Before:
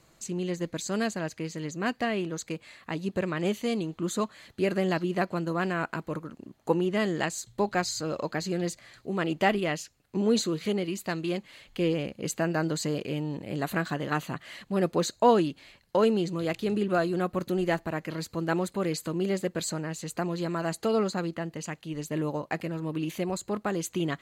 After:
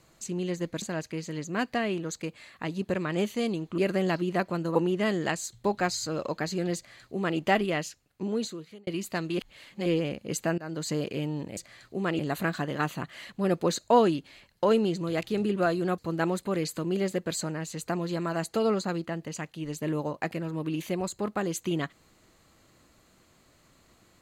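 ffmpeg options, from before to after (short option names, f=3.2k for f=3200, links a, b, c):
-filter_complex "[0:a]asplit=11[a][b][c][d][e][f][g][h][i][j][k];[a]atrim=end=0.822[l];[b]atrim=start=1.088:end=4.052[m];[c]atrim=start=4.598:end=5.572[n];[d]atrim=start=6.688:end=10.81,asetpts=PTS-STARTPTS,afade=t=out:st=3.132:d=0.99[o];[e]atrim=start=10.81:end=11.322,asetpts=PTS-STARTPTS,afade=t=in:d=0.004:c=hsin[p];[f]atrim=start=11.318:end=11.802,asetpts=PTS-STARTPTS,areverse[q];[g]atrim=start=11.798:end=12.52,asetpts=PTS-STARTPTS,afade=t=out:st=0.718:d=0.004:c=hsin:silence=0.0944061[r];[h]atrim=start=12.52:end=13.512,asetpts=PTS-STARTPTS,afade=t=in:d=0.35:silence=0.0944061[s];[i]atrim=start=8.698:end=9.322[t];[j]atrim=start=13.508:end=17.302[u];[k]atrim=start=18.268[v];[l][m]acrossfade=d=0.004:c1=hsin:c2=hsin[w];[w][n]acrossfade=d=0.004:c1=hsin:c2=hsin[x];[o][p]concat=n=2:v=0:a=1[y];[x][y]acrossfade=d=0.004:c1=hsin:c2=hsin[z];[z][q]acrossfade=d=0.004:c1=hsin:c2=hsin[aa];[r][s]concat=n=2:v=0:a=1[ab];[aa][ab]acrossfade=d=0.004:c1=hsin:c2=hsin[ac];[ac][t]acrossfade=d=0.004:c1=hsin:c2=hsin[ad];[ad][u]acrossfade=d=0.004:c1=hsin:c2=hsin[ae];[ae][v]acrossfade=d=0.004:c1=hsin:c2=hsin"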